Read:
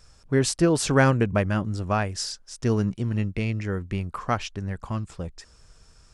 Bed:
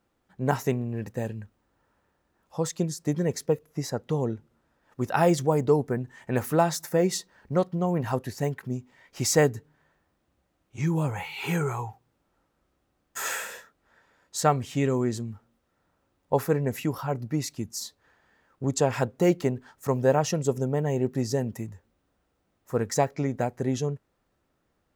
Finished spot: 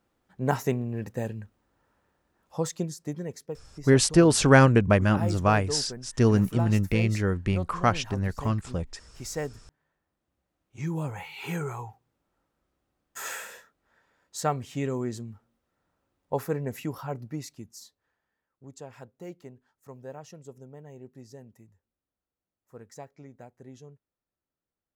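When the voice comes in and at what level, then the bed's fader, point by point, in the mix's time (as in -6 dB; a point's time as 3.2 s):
3.55 s, +2.5 dB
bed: 2.6 s -0.5 dB
3.48 s -12 dB
9.65 s -12 dB
10.94 s -5 dB
17.15 s -5 dB
18.5 s -20 dB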